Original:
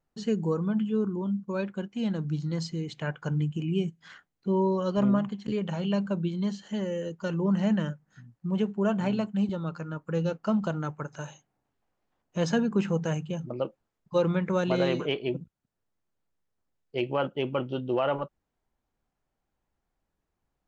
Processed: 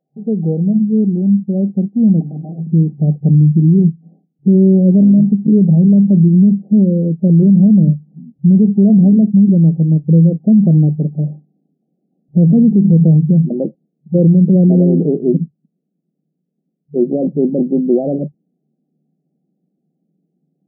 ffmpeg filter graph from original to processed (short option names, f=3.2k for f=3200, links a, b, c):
-filter_complex "[0:a]asettb=1/sr,asplit=3[a][b][c];[a]atrim=end=2.204[d];[b]atrim=start=2.2:end=2.67,asetpts=PTS-STARTPTS,afade=t=in:d=0.004:c=qsin,afade=t=out:st=0.466:d=0.004:c=qsin,highpass=270,lowpass=2.3k,acrusher=bits=9:dc=4:mix=0:aa=0.000001,aeval=exprs='(mod(59.6*val(0)+1,2)-1)/59.6':c=same[e];[c]atrim=start=2.666[f];[d][e]acrossfade=d=0.004:c1=hsin:c2=qsin[g];[g][f]acrossfade=d=0.004:c1=qsin:c2=hsin,afftfilt=real='re*between(b*sr/4096,140,800)':imag='im*between(b*sr/4096,140,800)':win_size=4096:overlap=0.75,asubboost=boost=11.5:cutoff=210,alimiter=level_in=11.5dB:limit=-1dB:release=50:level=0:latency=1,volume=-2.5dB"